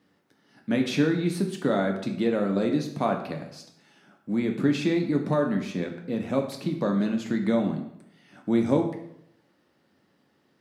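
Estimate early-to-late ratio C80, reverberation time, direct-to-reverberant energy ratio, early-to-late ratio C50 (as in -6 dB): 10.5 dB, 0.75 s, 2.5 dB, 7.5 dB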